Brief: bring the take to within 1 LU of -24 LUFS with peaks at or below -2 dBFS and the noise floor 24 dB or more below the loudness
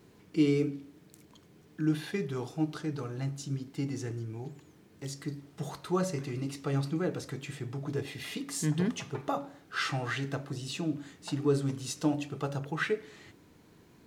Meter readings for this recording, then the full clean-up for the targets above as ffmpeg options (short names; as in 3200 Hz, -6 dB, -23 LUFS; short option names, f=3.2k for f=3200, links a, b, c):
loudness -34.0 LUFS; peak -15.5 dBFS; loudness target -24.0 LUFS
-> -af "volume=10dB"